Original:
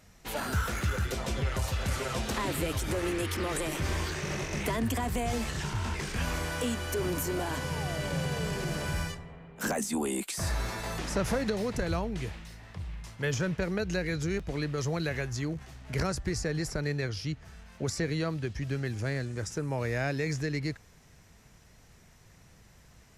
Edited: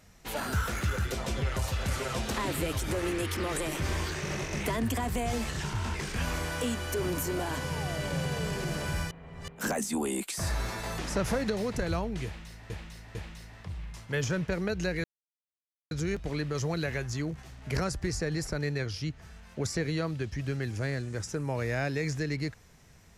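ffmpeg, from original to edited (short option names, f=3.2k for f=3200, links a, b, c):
-filter_complex "[0:a]asplit=6[a][b][c][d][e][f];[a]atrim=end=9.112[g];[b]atrim=start=9.108:end=9.482,asetpts=PTS-STARTPTS,areverse[h];[c]atrim=start=9.478:end=12.702[i];[d]atrim=start=12.248:end=12.702[j];[e]atrim=start=12.248:end=14.14,asetpts=PTS-STARTPTS,afade=t=out:st=1.888:d=0.004:c=hsin,apad=pad_dur=0.87[k];[f]atrim=start=14.14,asetpts=PTS-STARTPTS,afade=t=in:d=0.004:c=hsin[l];[g][h]acrossfade=d=0.004:c1=hsin:c2=hsin[m];[m][i]acrossfade=d=0.004:c1=hsin:c2=hsin[n];[n][j]acrossfade=d=0.004:c1=hsin:c2=hsin[o];[k][l]concat=n=2:v=0:a=1[p];[o][p]acrossfade=d=0.004:c1=hsin:c2=hsin"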